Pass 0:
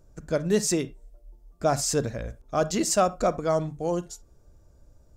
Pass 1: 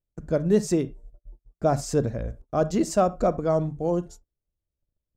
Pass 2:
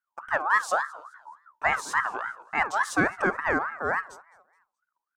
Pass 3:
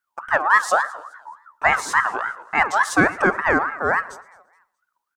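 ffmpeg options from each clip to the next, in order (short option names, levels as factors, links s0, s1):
-af "tiltshelf=f=1200:g=6.5,agate=range=0.02:threshold=0.01:ratio=16:detection=peak,volume=0.75"
-af "aecho=1:1:212|424|636:0.075|0.0285|0.0108,aeval=exprs='val(0)*sin(2*PI*1200*n/s+1200*0.25/3.5*sin(2*PI*3.5*n/s))':c=same"
-af "aecho=1:1:115|230|345:0.0794|0.031|0.0121,volume=2.24"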